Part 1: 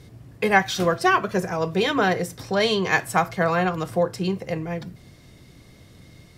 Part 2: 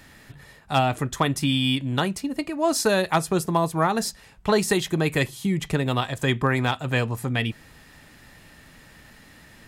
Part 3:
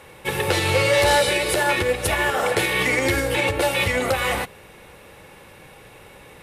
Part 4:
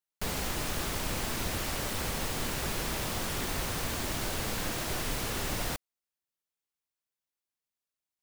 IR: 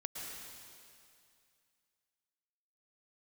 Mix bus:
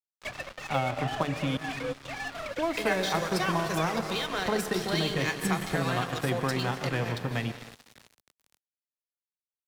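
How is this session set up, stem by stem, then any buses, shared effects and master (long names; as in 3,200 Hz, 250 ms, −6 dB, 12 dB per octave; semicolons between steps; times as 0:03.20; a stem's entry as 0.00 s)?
−6.5 dB, 2.35 s, bus A, send −7 dB, spectral tilt +2.5 dB per octave
−4.0 dB, 0.00 s, muted 0:01.57–0:02.58, bus B, send −5 dB, high-shelf EQ 3,100 Hz −11.5 dB; mains-hum notches 50/100/150/200/250/300/350/400/450/500 Hz
−3.5 dB, 0.00 s, bus A, no send, three sine waves on the formant tracks; gate pattern "xxxxxx.xxxx.x" 183 BPM −12 dB; automatic ducking −8 dB, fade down 0.60 s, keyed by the second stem
−14.0 dB, 0.00 s, bus B, no send, parametric band 1,200 Hz +14 dB 0.34 octaves
bus A: 0.0 dB, parametric band 3,800 Hz +10.5 dB 0.89 octaves; downward compressor, threshold −32 dBFS, peak gain reduction 15 dB
bus B: 0.0 dB, low-pass filter 5,000 Hz 12 dB per octave; downward compressor 2.5 to 1, threshold −31 dBFS, peak gain reduction 8 dB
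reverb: on, RT60 2.4 s, pre-delay 103 ms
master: dead-zone distortion −38.5 dBFS; multiband upward and downward compressor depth 40%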